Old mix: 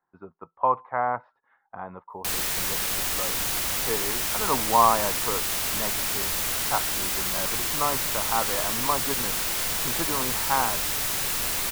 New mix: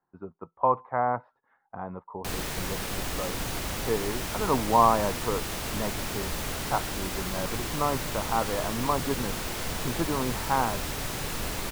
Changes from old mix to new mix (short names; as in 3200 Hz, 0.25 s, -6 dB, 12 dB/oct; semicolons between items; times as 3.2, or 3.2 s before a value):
background: add high shelf 8100 Hz -7.5 dB; master: add tilt shelf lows +5.5 dB, about 710 Hz